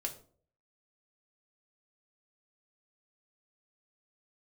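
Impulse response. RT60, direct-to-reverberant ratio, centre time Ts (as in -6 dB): 0.50 s, 1.5 dB, 12 ms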